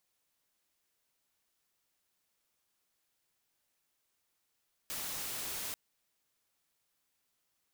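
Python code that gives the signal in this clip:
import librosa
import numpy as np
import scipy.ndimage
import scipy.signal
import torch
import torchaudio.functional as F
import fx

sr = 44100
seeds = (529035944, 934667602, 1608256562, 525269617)

y = fx.noise_colour(sr, seeds[0], length_s=0.84, colour='white', level_db=-39.5)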